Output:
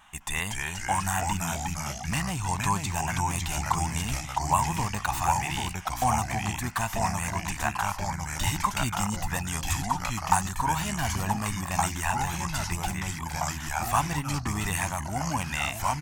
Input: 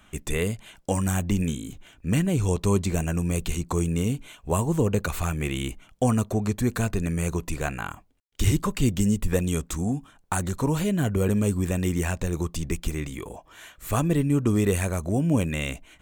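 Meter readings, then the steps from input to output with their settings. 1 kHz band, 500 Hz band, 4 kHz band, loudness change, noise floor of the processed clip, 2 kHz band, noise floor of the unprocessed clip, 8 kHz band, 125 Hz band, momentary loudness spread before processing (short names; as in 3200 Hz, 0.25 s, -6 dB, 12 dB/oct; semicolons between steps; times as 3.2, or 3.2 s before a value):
+9.0 dB, -10.0 dB, +4.0 dB, -2.5 dB, -37 dBFS, +4.0 dB, -57 dBFS, +3.5 dB, -5.5 dB, 10 LU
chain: comb 1.1 ms, depth 35%; vibrato 0.37 Hz 5.7 cents; echoes that change speed 0.205 s, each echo -2 st, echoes 3; resonant low shelf 630 Hz -10 dB, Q 3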